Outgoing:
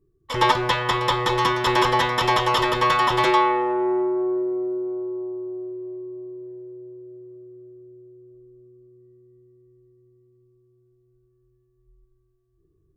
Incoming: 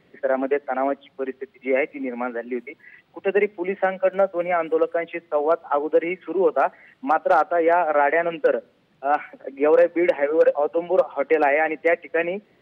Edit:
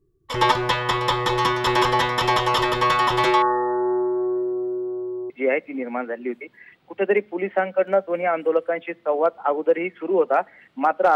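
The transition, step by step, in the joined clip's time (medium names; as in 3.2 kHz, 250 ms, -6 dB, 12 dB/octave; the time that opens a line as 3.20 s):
outgoing
3.42–5.30 s: brick-wall FIR band-stop 1.9–7.2 kHz
5.30 s: go over to incoming from 1.56 s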